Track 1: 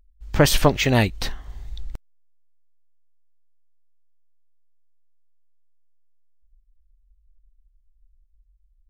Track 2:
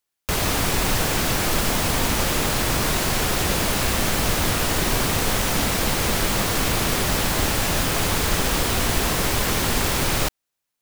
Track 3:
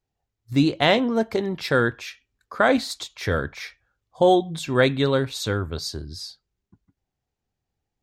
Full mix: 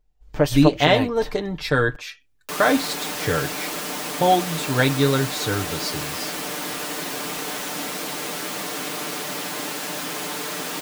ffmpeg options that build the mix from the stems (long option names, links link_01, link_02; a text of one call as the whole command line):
ffmpeg -i stem1.wav -i stem2.wav -i stem3.wav -filter_complex "[0:a]equalizer=frequency=530:width_type=o:width=1.8:gain=7.5,volume=-11dB[link_01];[1:a]highpass=frequency=200:width=0.5412,highpass=frequency=200:width=1.3066,adelay=2200,volume=-7.5dB[link_02];[2:a]volume=-0.5dB[link_03];[link_01][link_02][link_03]amix=inputs=3:normalize=0,aecho=1:1:6.7:0.65" out.wav